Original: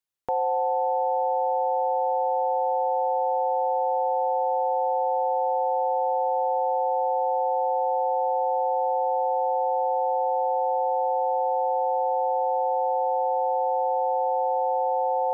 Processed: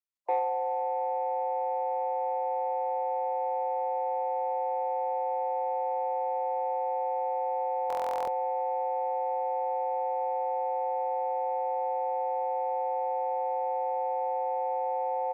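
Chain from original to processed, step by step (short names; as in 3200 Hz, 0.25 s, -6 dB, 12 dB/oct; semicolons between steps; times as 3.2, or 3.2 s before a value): loudest bins only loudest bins 32; notches 60/120/180/240/300/360/420/480 Hz; feedback echo 0.102 s, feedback 59%, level -18.5 dB; reverb removal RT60 1.2 s; soft clip -18.5 dBFS, distortion -28 dB; steep high-pass 300 Hz 96 dB/oct; stuck buffer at 7.88, samples 1024, times 16; Opus 32 kbps 48000 Hz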